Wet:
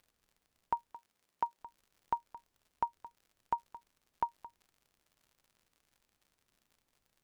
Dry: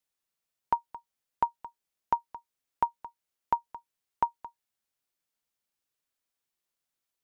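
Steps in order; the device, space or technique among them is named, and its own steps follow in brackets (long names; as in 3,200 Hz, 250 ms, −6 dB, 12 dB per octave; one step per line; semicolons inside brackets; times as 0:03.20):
vinyl LP (surface crackle 88 per second −48 dBFS; pink noise bed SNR 38 dB)
0:00.92–0:01.59: high-pass filter 200 Hz 6 dB per octave
level −6.5 dB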